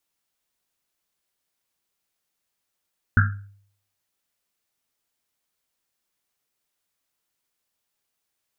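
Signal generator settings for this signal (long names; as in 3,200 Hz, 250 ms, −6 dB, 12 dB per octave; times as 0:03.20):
drum after Risset, pitch 100 Hz, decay 0.60 s, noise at 1,500 Hz, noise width 340 Hz, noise 35%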